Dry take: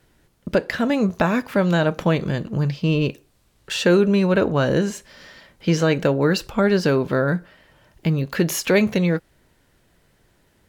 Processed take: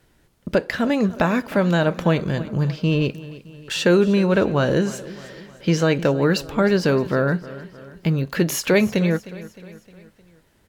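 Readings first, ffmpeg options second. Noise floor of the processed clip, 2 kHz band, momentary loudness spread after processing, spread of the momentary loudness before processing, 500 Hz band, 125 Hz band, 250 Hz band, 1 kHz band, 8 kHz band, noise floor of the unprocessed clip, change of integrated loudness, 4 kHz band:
−60 dBFS, 0.0 dB, 19 LU, 9 LU, 0.0 dB, 0.0 dB, 0.0 dB, 0.0 dB, 0.0 dB, −61 dBFS, 0.0 dB, 0.0 dB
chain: -af "aecho=1:1:308|616|924|1232:0.133|0.0693|0.0361|0.0188"

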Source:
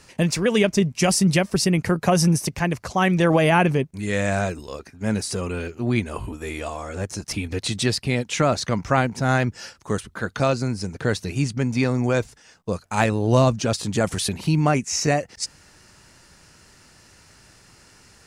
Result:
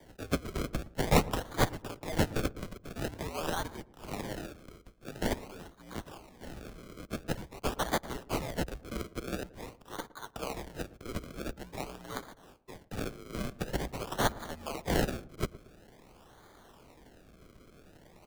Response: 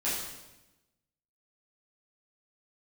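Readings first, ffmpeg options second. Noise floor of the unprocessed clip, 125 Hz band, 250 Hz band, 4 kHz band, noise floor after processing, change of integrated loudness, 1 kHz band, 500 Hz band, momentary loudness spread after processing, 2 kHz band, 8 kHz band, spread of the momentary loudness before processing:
−53 dBFS, −16.0 dB, −15.0 dB, −12.5 dB, −59 dBFS, −13.5 dB, −12.0 dB, −14.0 dB, 16 LU, −13.5 dB, −15.5 dB, 12 LU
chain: -filter_complex "[0:a]aderivative,acrusher=samples=32:mix=1:aa=0.000001:lfo=1:lforange=32:lforate=0.47,afreqshift=-68,asplit=2[link_01][link_02];[link_02]adelay=114,lowpass=frequency=900:poles=1,volume=-17dB,asplit=2[link_03][link_04];[link_04]adelay=114,lowpass=frequency=900:poles=1,volume=0.44,asplit=2[link_05][link_06];[link_06]adelay=114,lowpass=frequency=900:poles=1,volume=0.44,asplit=2[link_07][link_08];[link_08]adelay=114,lowpass=frequency=900:poles=1,volume=0.44[link_09];[link_01][link_03][link_05][link_07][link_09]amix=inputs=5:normalize=0"

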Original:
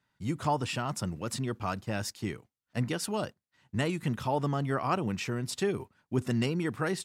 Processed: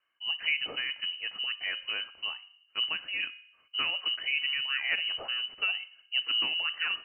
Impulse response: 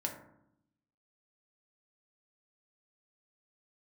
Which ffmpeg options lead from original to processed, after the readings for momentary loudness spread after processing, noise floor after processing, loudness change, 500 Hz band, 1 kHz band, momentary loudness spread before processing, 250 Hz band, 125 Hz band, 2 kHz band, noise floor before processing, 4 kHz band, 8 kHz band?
8 LU, −66 dBFS, +2.5 dB, −18.0 dB, −11.5 dB, 7 LU, −25.5 dB, below −30 dB, +9.0 dB, −85 dBFS, +14.5 dB, below −40 dB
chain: -filter_complex "[0:a]bandreject=frequency=212.9:width_type=h:width=4,bandreject=frequency=425.8:width_type=h:width=4,bandreject=frequency=638.7:width_type=h:width=4,bandreject=frequency=851.6:width_type=h:width=4,bandreject=frequency=1064.5:width_type=h:width=4,bandreject=frequency=1277.4:width_type=h:width=4,bandreject=frequency=1490.3:width_type=h:width=4,bandreject=frequency=1703.2:width_type=h:width=4,bandreject=frequency=1916.1:width_type=h:width=4,bandreject=frequency=2129:width_type=h:width=4,bandreject=frequency=2341.9:width_type=h:width=4,bandreject=frequency=2554.8:width_type=h:width=4,asplit=2[link_01][link_02];[1:a]atrim=start_sample=2205[link_03];[link_02][link_03]afir=irnorm=-1:irlink=0,volume=-13.5dB[link_04];[link_01][link_04]amix=inputs=2:normalize=0,lowpass=frequency=2600:width_type=q:width=0.5098,lowpass=frequency=2600:width_type=q:width=0.6013,lowpass=frequency=2600:width_type=q:width=0.9,lowpass=frequency=2600:width_type=q:width=2.563,afreqshift=-3100,volume=-2.5dB"

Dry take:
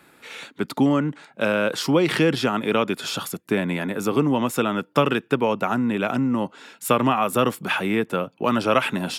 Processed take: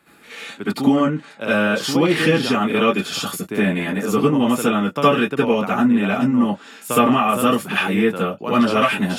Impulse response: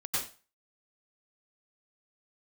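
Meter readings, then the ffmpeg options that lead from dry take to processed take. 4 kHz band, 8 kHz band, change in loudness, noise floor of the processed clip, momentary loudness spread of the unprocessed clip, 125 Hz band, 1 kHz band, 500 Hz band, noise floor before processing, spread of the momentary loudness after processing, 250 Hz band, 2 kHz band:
+3.5 dB, +3.5 dB, +4.0 dB, −45 dBFS, 8 LU, +2.5 dB, +4.0 dB, +3.0 dB, −56 dBFS, 8 LU, +5.0 dB, +4.5 dB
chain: -filter_complex "[1:a]atrim=start_sample=2205,afade=type=out:start_time=0.2:duration=0.01,atrim=end_sample=9261,asetrate=66150,aresample=44100[link_01];[0:a][link_01]afir=irnorm=-1:irlink=0,volume=2dB"

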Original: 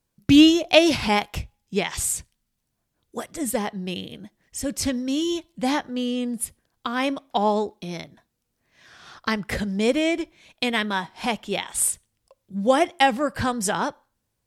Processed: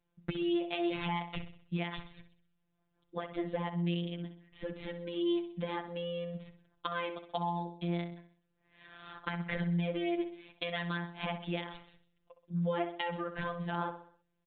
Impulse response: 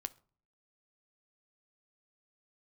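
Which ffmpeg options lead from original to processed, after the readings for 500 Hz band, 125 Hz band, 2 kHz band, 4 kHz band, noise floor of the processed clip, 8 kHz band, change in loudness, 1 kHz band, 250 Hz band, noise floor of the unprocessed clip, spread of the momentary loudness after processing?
−12.5 dB, −2.5 dB, −13.0 dB, −16.5 dB, −78 dBFS, below −40 dB, −13.5 dB, −13.0 dB, −13.5 dB, −77 dBFS, 12 LU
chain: -filter_complex "[0:a]alimiter=limit=-13dB:level=0:latency=1,acompressor=threshold=-29dB:ratio=6,afftfilt=real='hypot(re,im)*cos(PI*b)':imag='0':win_size=1024:overlap=0.75,asplit=2[link_01][link_02];[link_02]aecho=0:1:64|128|192|256|320:0.282|0.132|0.0623|0.0293|0.0138[link_03];[link_01][link_03]amix=inputs=2:normalize=0,aresample=8000,aresample=44100"

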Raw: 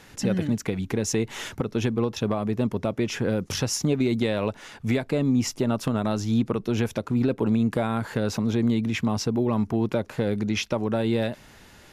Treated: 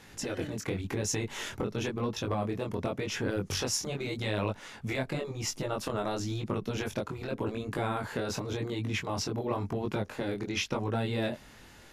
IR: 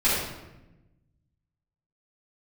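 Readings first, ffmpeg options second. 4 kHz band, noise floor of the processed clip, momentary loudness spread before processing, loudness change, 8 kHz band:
−3.0 dB, −53 dBFS, 4 LU, −7.5 dB, −3.0 dB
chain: -af "flanger=delay=19:depth=4.9:speed=0.91,afftfilt=real='re*lt(hypot(re,im),0.282)':imag='im*lt(hypot(re,im),0.282)':win_size=1024:overlap=0.75"

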